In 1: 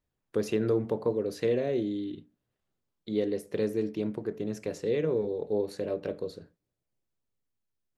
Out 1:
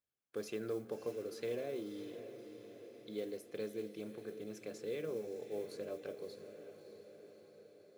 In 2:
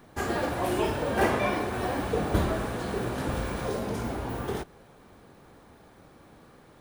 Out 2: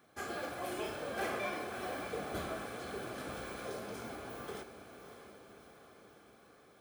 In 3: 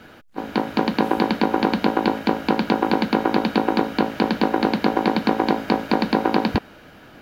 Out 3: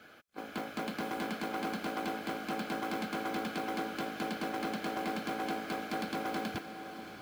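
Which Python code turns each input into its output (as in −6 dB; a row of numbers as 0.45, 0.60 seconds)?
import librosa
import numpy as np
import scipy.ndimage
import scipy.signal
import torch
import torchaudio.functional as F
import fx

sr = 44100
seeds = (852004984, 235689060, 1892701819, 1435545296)

p1 = fx.low_shelf(x, sr, hz=460.0, db=-10.0)
p2 = fx.mod_noise(p1, sr, seeds[0], snr_db=25)
p3 = np.clip(p2, -10.0 ** (-23.5 / 20.0), 10.0 ** (-23.5 / 20.0))
p4 = fx.notch_comb(p3, sr, f0_hz=930.0)
p5 = p4 + fx.echo_diffused(p4, sr, ms=618, feedback_pct=61, wet_db=-10.5, dry=0)
y = p5 * 10.0 ** (-7.0 / 20.0)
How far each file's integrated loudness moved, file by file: −13.0, −11.5, −16.0 LU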